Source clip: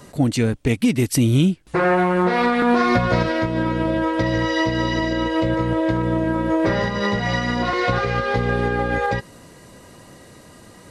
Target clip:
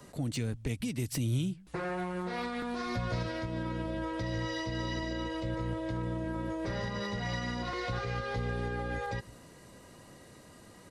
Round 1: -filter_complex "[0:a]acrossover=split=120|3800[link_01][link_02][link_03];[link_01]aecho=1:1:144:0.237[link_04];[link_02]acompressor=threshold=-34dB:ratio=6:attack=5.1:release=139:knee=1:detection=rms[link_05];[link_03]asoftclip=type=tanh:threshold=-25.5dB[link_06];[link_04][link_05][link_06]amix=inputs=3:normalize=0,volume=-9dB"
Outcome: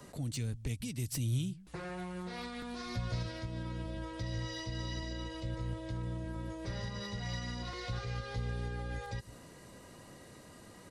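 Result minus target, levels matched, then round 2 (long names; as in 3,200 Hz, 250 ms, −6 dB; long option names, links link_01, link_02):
downward compressor: peak gain reduction +8.5 dB
-filter_complex "[0:a]acrossover=split=120|3800[link_01][link_02][link_03];[link_01]aecho=1:1:144:0.237[link_04];[link_02]acompressor=threshold=-24dB:ratio=6:attack=5.1:release=139:knee=1:detection=rms[link_05];[link_03]asoftclip=type=tanh:threshold=-25.5dB[link_06];[link_04][link_05][link_06]amix=inputs=3:normalize=0,volume=-9dB"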